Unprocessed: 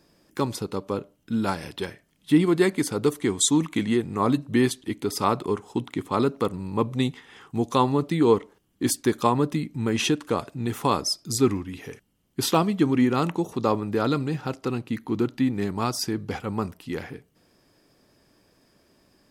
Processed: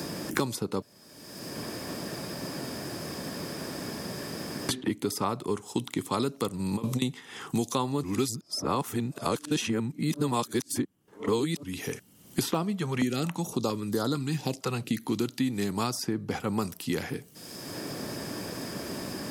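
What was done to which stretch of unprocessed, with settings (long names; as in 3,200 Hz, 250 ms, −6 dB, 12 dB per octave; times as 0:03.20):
0:00.82–0:04.69: fill with room tone
0:06.59–0:07.02: compressor whose output falls as the input rises −28 dBFS, ratio −0.5
0:08.03–0:11.63: reverse
0:12.79–0:15.02: notch on a step sequencer 4.4 Hz 290–2,500 Hz
whole clip: high-pass filter 110 Hz; bass and treble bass +3 dB, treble +10 dB; multiband upward and downward compressor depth 100%; level −5 dB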